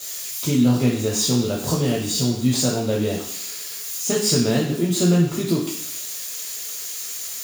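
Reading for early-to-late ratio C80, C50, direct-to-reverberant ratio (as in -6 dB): 7.5 dB, 4.5 dB, -3.5 dB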